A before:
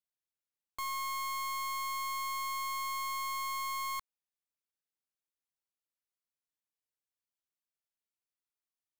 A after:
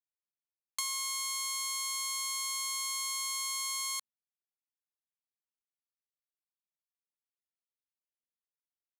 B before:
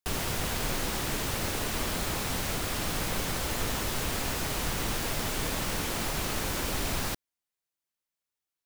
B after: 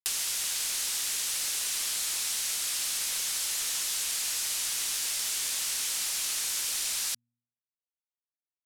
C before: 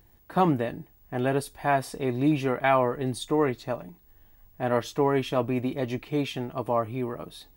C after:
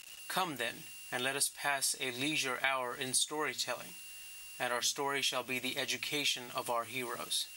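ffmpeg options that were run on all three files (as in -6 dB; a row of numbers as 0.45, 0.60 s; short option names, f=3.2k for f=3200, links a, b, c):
-af "lowshelf=f=210:g=-9,crystalizer=i=8:c=0,aeval=exprs='val(0)*gte(abs(val(0)),0.00891)':c=same,lowpass=9.1k,tiltshelf=f=1.2k:g=-6,bandreject=f=119:t=h:w=4,bandreject=f=238:t=h:w=4,acompressor=threshold=-29dB:ratio=3,volume=-3.5dB"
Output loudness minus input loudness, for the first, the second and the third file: +3.0, +2.5, -7.0 LU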